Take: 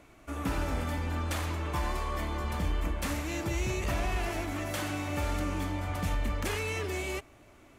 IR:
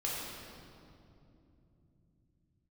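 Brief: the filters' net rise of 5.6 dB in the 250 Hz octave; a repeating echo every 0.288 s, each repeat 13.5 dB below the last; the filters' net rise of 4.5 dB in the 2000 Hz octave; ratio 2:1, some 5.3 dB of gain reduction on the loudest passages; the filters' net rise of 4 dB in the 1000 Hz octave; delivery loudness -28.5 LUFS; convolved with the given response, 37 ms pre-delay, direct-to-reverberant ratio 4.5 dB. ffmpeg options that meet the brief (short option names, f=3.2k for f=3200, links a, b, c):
-filter_complex "[0:a]equalizer=f=250:t=o:g=7,equalizer=f=1k:t=o:g=3.5,equalizer=f=2k:t=o:g=4.5,acompressor=threshold=-32dB:ratio=2,aecho=1:1:288|576:0.211|0.0444,asplit=2[a][b];[1:a]atrim=start_sample=2205,adelay=37[c];[b][c]afir=irnorm=-1:irlink=0,volume=-9dB[d];[a][d]amix=inputs=2:normalize=0,volume=3.5dB"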